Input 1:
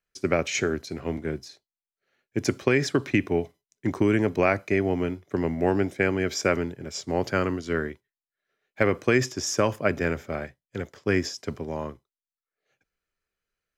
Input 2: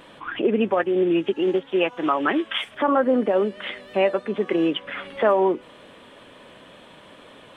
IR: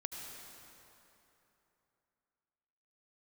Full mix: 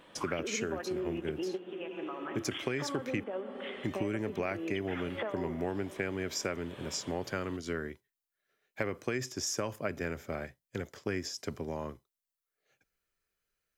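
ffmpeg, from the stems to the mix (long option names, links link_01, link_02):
-filter_complex "[0:a]highshelf=frequency=8200:gain=8.5,volume=-1dB,asplit=3[link_01][link_02][link_03];[link_01]atrim=end=3.24,asetpts=PTS-STARTPTS,afade=type=out:start_time=3.236:duration=0.004:curve=hsin[link_04];[link_02]atrim=start=3.24:end=3.79,asetpts=PTS-STARTPTS,volume=0[link_05];[link_03]atrim=start=3.79,asetpts=PTS-STARTPTS,afade=type=in:duration=0.004:curve=hsin[link_06];[link_04][link_05][link_06]concat=n=3:v=0:a=1,asplit=2[link_07][link_08];[1:a]acompressor=threshold=-28dB:ratio=6,volume=-3dB,asplit=2[link_09][link_10];[link_10]volume=-4.5dB[link_11];[link_08]apad=whole_len=333571[link_12];[link_09][link_12]sidechaingate=range=-33dB:threshold=-48dB:ratio=16:detection=peak[link_13];[2:a]atrim=start_sample=2205[link_14];[link_11][link_14]afir=irnorm=-1:irlink=0[link_15];[link_07][link_13][link_15]amix=inputs=3:normalize=0,acompressor=threshold=-34dB:ratio=3"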